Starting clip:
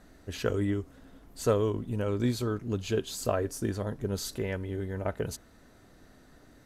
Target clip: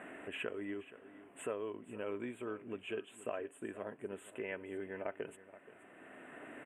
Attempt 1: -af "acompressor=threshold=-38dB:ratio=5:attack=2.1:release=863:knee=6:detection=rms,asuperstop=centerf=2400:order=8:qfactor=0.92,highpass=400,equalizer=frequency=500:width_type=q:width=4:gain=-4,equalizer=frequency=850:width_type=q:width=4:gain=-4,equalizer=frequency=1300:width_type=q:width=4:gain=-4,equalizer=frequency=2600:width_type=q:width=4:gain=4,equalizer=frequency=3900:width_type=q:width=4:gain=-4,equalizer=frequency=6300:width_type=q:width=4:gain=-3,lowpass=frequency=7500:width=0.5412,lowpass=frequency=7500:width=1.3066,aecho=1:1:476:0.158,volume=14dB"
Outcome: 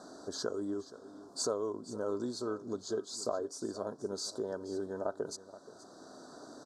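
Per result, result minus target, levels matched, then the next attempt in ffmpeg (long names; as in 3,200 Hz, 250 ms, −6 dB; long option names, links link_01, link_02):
2,000 Hz band −13.0 dB; downward compressor: peak gain reduction −5.5 dB
-af "acompressor=threshold=-38dB:ratio=5:attack=2.1:release=863:knee=6:detection=rms,asuperstop=centerf=5100:order=8:qfactor=0.92,highpass=400,equalizer=frequency=500:width_type=q:width=4:gain=-4,equalizer=frequency=850:width_type=q:width=4:gain=-4,equalizer=frequency=1300:width_type=q:width=4:gain=-4,equalizer=frequency=2600:width_type=q:width=4:gain=4,equalizer=frequency=3900:width_type=q:width=4:gain=-4,equalizer=frequency=6300:width_type=q:width=4:gain=-3,lowpass=frequency=7500:width=0.5412,lowpass=frequency=7500:width=1.3066,aecho=1:1:476:0.158,volume=14dB"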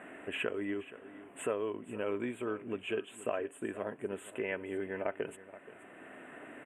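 downward compressor: peak gain reduction −5.5 dB
-af "acompressor=threshold=-45dB:ratio=5:attack=2.1:release=863:knee=6:detection=rms,asuperstop=centerf=5100:order=8:qfactor=0.92,highpass=400,equalizer=frequency=500:width_type=q:width=4:gain=-4,equalizer=frequency=850:width_type=q:width=4:gain=-4,equalizer=frequency=1300:width_type=q:width=4:gain=-4,equalizer=frequency=2600:width_type=q:width=4:gain=4,equalizer=frequency=3900:width_type=q:width=4:gain=-4,equalizer=frequency=6300:width_type=q:width=4:gain=-3,lowpass=frequency=7500:width=0.5412,lowpass=frequency=7500:width=1.3066,aecho=1:1:476:0.158,volume=14dB"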